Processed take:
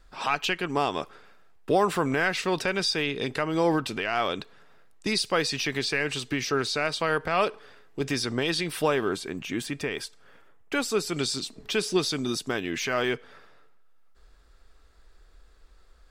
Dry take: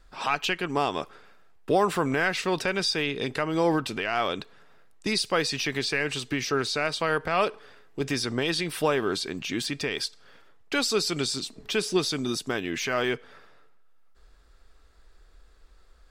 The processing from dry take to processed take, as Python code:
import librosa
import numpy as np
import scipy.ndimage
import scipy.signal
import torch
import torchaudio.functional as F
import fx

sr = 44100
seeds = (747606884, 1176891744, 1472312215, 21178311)

y = fx.peak_eq(x, sr, hz=4500.0, db=-9.0, octaves=1.0, at=(9.09, 11.14))